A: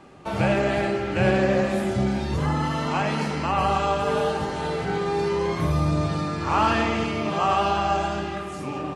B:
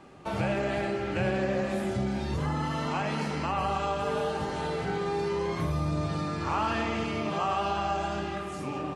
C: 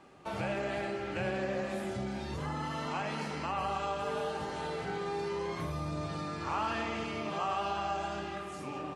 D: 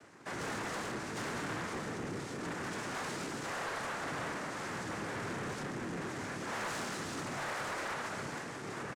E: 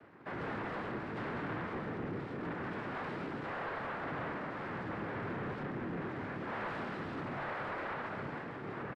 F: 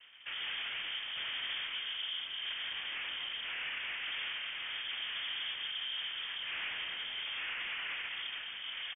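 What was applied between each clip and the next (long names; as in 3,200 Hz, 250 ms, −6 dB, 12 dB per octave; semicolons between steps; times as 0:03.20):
downward compressor 2 to 1, threshold −25 dBFS, peak gain reduction 5.5 dB; level −3 dB
low-shelf EQ 280 Hz −5.5 dB; level −4 dB
cochlear-implant simulation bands 3; soft clipping −34.5 dBFS, distortion −11 dB; double-tracking delay 29 ms −14 dB
high-frequency loss of the air 440 metres; level +1.5 dB
voice inversion scrambler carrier 3,400 Hz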